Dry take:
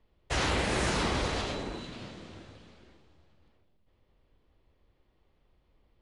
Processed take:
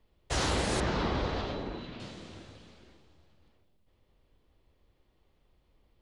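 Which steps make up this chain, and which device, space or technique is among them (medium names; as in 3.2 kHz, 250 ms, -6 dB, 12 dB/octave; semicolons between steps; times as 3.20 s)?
0.80–2.00 s: Bessel low-pass 3 kHz, order 4; dynamic bell 2.4 kHz, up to -5 dB, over -50 dBFS, Q 1.5; exciter from parts (in parallel at -7 dB: high-pass 2.5 kHz 12 dB/octave + saturation -30.5 dBFS, distortion -20 dB)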